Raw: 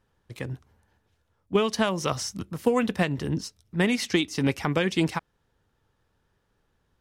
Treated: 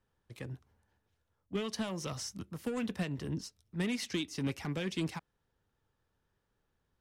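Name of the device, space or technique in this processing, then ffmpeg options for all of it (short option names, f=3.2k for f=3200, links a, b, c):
one-band saturation: -filter_complex "[0:a]acrossover=split=290|2800[a][b][c];[b]asoftclip=type=tanh:threshold=-29dB[d];[a][d][c]amix=inputs=3:normalize=0,volume=-8.5dB"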